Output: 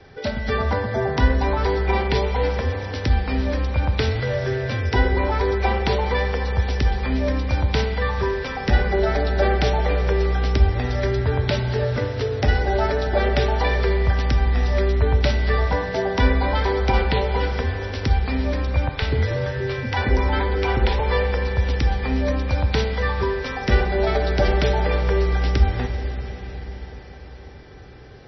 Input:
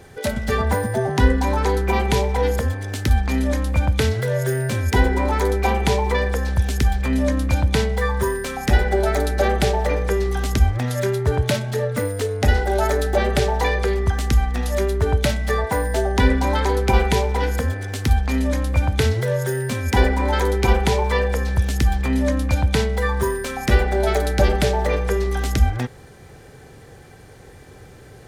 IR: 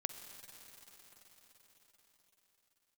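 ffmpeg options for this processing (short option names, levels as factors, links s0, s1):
-filter_complex "[0:a]adynamicequalizer=threshold=0.0158:dfrequency=180:dqfactor=2.2:tfrequency=180:tqfactor=2.2:attack=5:release=100:ratio=0.375:range=2.5:mode=cutabove:tftype=bell,asettb=1/sr,asplit=3[s0][s1][s2];[s0]atrim=end=18.894[s3];[s1]atrim=start=18.89:end=21,asetpts=PTS-STARTPTS,afade=t=in:d=0.004:c=qsin,afade=t=out:st=2.106:d=0.004:c=qsin,acrossover=split=550|5400[s4][s5][s6];[s4]adelay=130[s7];[s6]adelay=240[s8];[s7][s5][s8]amix=inputs=3:normalize=0,atrim=end_sample=93051[s9];[s2]atrim=start=20.996[s10];[s3][s9]acrossfade=d=0.004:c1=hsin:c2=qsin[s11];[s11][s10]acrossfade=d=0.004:c1=qsin:c2=hsin[s12];[1:a]atrim=start_sample=2205[s13];[s12][s13]afir=irnorm=-1:irlink=0" -ar 22050 -c:a libmp3lame -b:a 24k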